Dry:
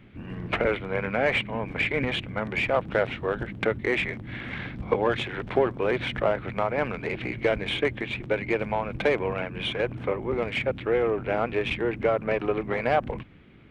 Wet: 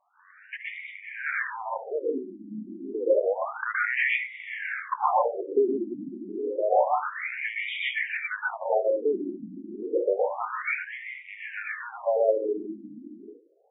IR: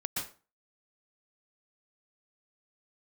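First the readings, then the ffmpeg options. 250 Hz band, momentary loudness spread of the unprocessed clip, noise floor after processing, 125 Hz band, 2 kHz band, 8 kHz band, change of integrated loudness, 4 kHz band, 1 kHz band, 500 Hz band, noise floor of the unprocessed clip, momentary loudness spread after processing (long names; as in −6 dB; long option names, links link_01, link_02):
−5.0 dB, 6 LU, −54 dBFS, below −20 dB, −0.5 dB, can't be measured, −1.0 dB, −9.0 dB, +1.5 dB, −1.5 dB, −41 dBFS, 14 LU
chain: -filter_complex "[0:a]acrossover=split=350 2000:gain=0.1 1 0.141[link_01][link_02][link_03];[link_01][link_02][link_03]amix=inputs=3:normalize=0[link_04];[1:a]atrim=start_sample=2205[link_05];[link_04][link_05]afir=irnorm=-1:irlink=0,dynaudnorm=framelen=210:gausssize=21:maxgain=7dB,afftfilt=real='re*between(b*sr/1024,240*pow(2700/240,0.5+0.5*sin(2*PI*0.29*pts/sr))/1.41,240*pow(2700/240,0.5+0.5*sin(2*PI*0.29*pts/sr))*1.41)':imag='im*between(b*sr/1024,240*pow(2700/240,0.5+0.5*sin(2*PI*0.29*pts/sr))/1.41,240*pow(2700/240,0.5+0.5*sin(2*PI*0.29*pts/sr))*1.41)':win_size=1024:overlap=0.75"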